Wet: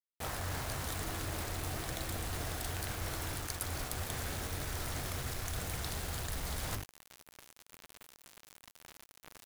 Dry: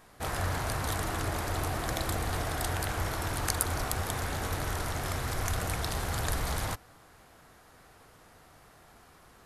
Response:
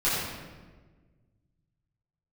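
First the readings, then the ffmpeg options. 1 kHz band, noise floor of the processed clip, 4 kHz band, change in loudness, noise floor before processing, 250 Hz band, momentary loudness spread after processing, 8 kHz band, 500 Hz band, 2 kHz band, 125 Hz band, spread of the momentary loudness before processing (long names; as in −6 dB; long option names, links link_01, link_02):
−9.0 dB, −65 dBFS, −4.0 dB, −6.0 dB, −57 dBFS, −6.5 dB, 18 LU, −4.5 dB, −7.5 dB, −6.5 dB, −6.5 dB, 3 LU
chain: -af "bandreject=frequency=50:width_type=h:width=6,bandreject=frequency=100:width_type=h:width=6,bandreject=frequency=150:width_type=h:width=6,bandreject=frequency=200:width_type=h:width=6,bandreject=frequency=250:width_type=h:width=6,bandreject=frequency=300:width_type=h:width=6,bandreject=frequency=350:width_type=h:width=6,bandreject=frequency=400:width_type=h:width=6,bandreject=frequency=450:width_type=h:width=6,acontrast=63,adynamicequalizer=threshold=0.00562:dfrequency=980:dqfactor=0.84:tfrequency=980:tqfactor=0.84:attack=5:release=100:ratio=0.375:range=2.5:mode=cutabove:tftype=bell,areverse,acompressor=threshold=-36dB:ratio=8,areverse,acrusher=bits=6:mix=0:aa=0.000001"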